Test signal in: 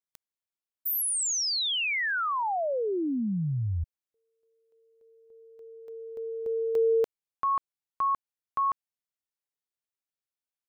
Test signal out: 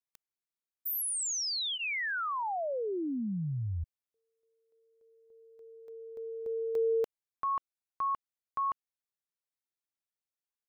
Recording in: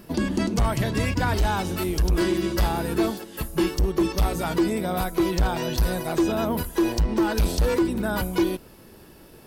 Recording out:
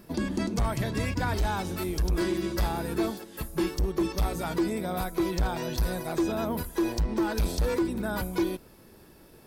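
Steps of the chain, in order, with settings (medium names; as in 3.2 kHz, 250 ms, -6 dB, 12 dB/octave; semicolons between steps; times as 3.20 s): band-stop 2.9 kHz, Q 13; trim -5 dB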